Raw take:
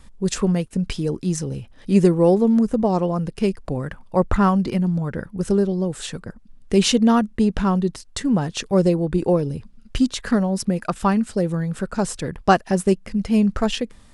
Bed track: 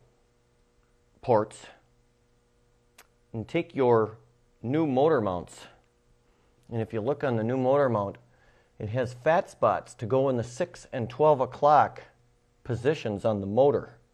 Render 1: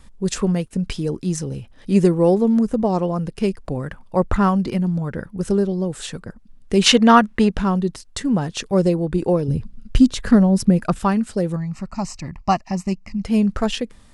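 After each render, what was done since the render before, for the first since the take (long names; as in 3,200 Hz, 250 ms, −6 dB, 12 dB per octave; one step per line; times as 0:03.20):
0:06.86–0:07.49: parametric band 1,600 Hz +12 dB 3 octaves
0:09.48–0:10.99: low-shelf EQ 300 Hz +10 dB
0:11.56–0:13.25: phaser with its sweep stopped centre 2,300 Hz, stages 8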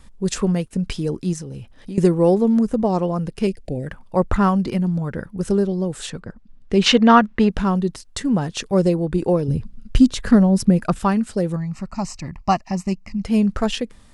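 0:01.33–0:01.98: downward compressor, threshold −28 dBFS
0:03.47–0:03.87: Chebyshev band-stop filter 620–2,100 Hz
0:06.10–0:07.49: high-frequency loss of the air 89 metres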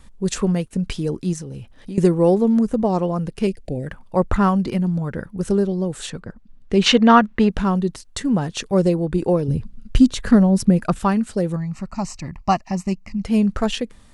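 notch filter 5,100 Hz, Q 24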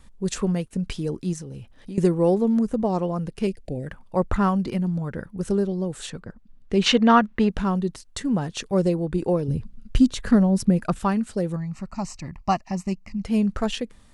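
level −4 dB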